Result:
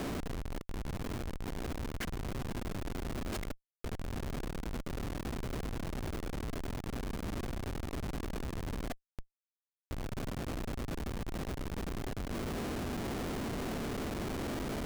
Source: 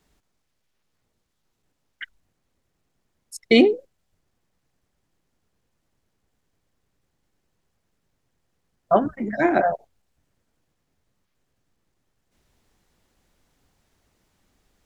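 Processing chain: per-bin compression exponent 0.4; flipped gate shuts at -9 dBFS, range -38 dB; Schmitt trigger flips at -30 dBFS; gain -1.5 dB

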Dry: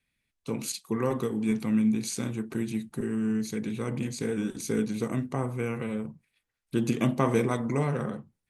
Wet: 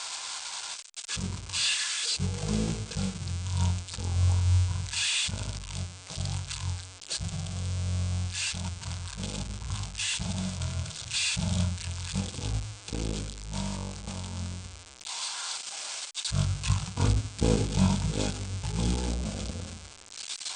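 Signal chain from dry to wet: switching spikes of -22 dBFS; notch 4500 Hz, Q 6.9; wide varispeed 0.413×; upward expander 1.5:1, over -35 dBFS; gain +1 dB

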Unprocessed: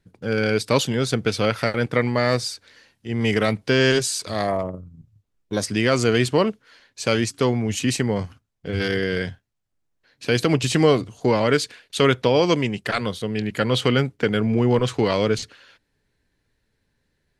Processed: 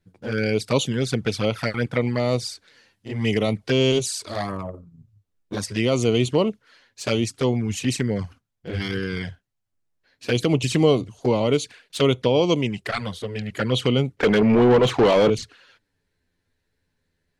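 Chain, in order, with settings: envelope flanger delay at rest 11.8 ms, full sweep at -16 dBFS; 14.17–15.3 overdrive pedal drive 25 dB, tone 1400 Hz, clips at -7.5 dBFS

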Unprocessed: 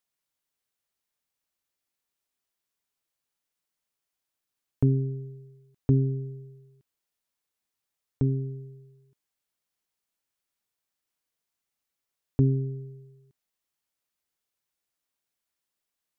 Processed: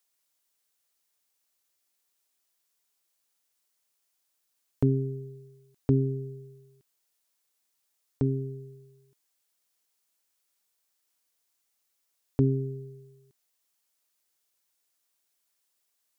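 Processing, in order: tone controls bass -7 dB, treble +6 dB; gain +3.5 dB

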